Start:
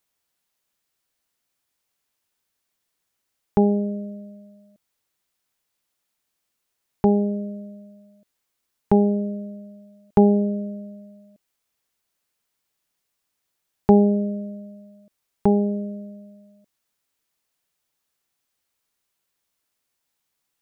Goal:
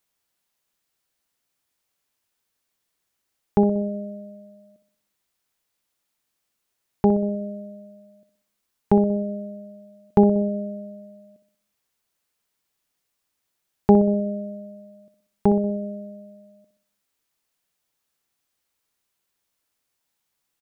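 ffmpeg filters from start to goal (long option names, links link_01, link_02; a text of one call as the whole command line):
ffmpeg -i in.wav -filter_complex "[0:a]asplit=2[link_01][link_02];[link_02]adelay=62,lowpass=frequency=1200:poles=1,volume=-10dB,asplit=2[link_03][link_04];[link_04]adelay=62,lowpass=frequency=1200:poles=1,volume=0.55,asplit=2[link_05][link_06];[link_06]adelay=62,lowpass=frequency=1200:poles=1,volume=0.55,asplit=2[link_07][link_08];[link_08]adelay=62,lowpass=frequency=1200:poles=1,volume=0.55,asplit=2[link_09][link_10];[link_10]adelay=62,lowpass=frequency=1200:poles=1,volume=0.55,asplit=2[link_11][link_12];[link_12]adelay=62,lowpass=frequency=1200:poles=1,volume=0.55[link_13];[link_01][link_03][link_05][link_07][link_09][link_11][link_13]amix=inputs=7:normalize=0" out.wav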